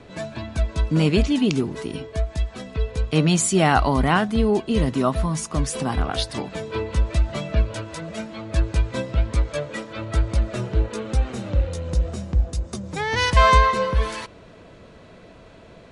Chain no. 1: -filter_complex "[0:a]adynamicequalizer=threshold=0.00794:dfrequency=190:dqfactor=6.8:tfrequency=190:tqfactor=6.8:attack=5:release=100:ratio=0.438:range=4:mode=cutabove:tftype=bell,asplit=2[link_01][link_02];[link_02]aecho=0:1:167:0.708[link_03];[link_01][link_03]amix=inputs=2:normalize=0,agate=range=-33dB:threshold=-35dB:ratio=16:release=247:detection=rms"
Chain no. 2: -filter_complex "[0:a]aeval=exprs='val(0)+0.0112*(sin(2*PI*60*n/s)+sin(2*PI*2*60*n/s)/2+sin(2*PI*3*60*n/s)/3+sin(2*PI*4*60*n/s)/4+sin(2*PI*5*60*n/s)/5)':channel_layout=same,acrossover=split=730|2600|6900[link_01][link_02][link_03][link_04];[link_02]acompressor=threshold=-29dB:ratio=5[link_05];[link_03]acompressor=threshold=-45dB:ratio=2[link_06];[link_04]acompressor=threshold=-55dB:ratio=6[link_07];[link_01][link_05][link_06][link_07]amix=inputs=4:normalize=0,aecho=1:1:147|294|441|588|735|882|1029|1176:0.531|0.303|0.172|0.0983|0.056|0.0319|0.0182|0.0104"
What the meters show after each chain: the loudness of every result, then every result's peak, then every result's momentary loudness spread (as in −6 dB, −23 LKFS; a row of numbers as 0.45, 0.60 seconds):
−21.0, −22.5 LKFS; −1.0, −4.5 dBFS; 12, 13 LU